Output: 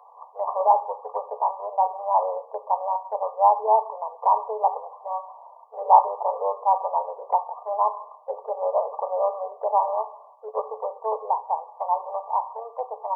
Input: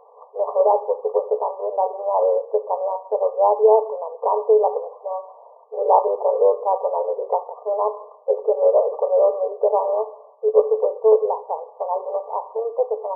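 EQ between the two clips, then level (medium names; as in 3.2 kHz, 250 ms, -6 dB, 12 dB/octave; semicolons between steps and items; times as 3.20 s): Chebyshev high-pass 830 Hz, order 3; +3.5 dB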